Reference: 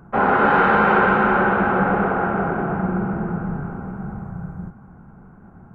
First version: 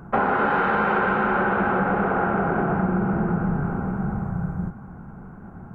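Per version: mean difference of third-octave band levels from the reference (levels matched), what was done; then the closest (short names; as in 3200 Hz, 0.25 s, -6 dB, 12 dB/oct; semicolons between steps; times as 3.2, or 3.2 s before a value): 3.0 dB: compressor, threshold -23 dBFS, peak gain reduction 11 dB; gain +4.5 dB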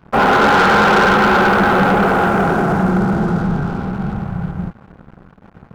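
5.5 dB: sample leveller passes 3; gain -2.5 dB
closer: first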